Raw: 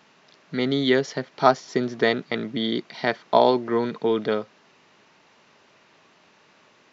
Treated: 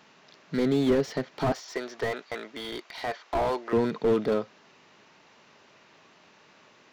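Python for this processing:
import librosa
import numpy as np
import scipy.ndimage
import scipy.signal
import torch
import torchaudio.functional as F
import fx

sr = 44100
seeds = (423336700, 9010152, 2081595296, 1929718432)

y = fx.highpass(x, sr, hz=620.0, slope=12, at=(1.52, 3.73))
y = fx.slew_limit(y, sr, full_power_hz=48.0)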